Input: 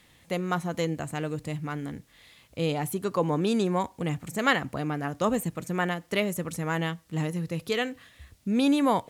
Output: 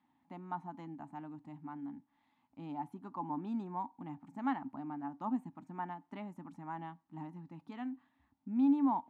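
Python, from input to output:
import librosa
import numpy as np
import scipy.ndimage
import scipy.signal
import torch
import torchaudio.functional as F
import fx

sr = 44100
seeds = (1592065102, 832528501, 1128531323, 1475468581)

y = fx.double_bandpass(x, sr, hz=480.0, octaves=1.7)
y = F.gain(torch.from_numpy(y), -2.5).numpy()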